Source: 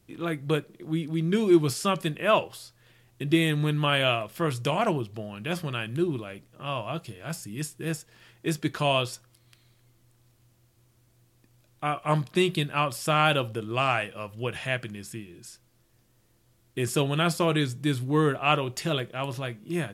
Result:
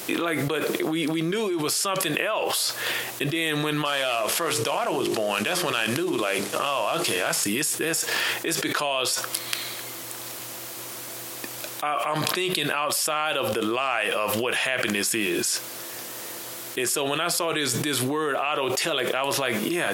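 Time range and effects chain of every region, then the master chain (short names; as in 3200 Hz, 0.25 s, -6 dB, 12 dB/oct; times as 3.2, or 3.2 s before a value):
3.85–7.44 CVSD 64 kbps + notches 50/100/150/200/250/300/350/400/450 Hz + hard clip -14.5 dBFS
whole clip: HPF 460 Hz 12 dB/oct; high shelf 11000 Hz +4 dB; fast leveller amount 100%; gain -6.5 dB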